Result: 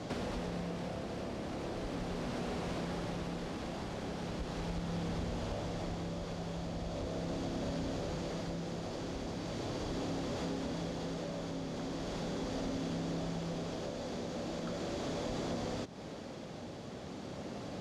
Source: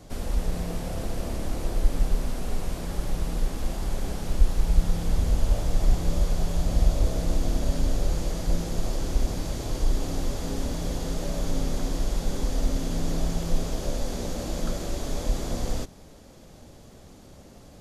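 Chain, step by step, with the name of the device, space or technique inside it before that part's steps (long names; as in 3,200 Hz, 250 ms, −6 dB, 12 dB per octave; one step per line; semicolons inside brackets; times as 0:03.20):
AM radio (band-pass filter 130–4,500 Hz; downward compressor, threshold −43 dBFS, peak gain reduction 14.5 dB; soft clipping −36 dBFS, distortion −23 dB; amplitude tremolo 0.39 Hz, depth 29%)
level +9 dB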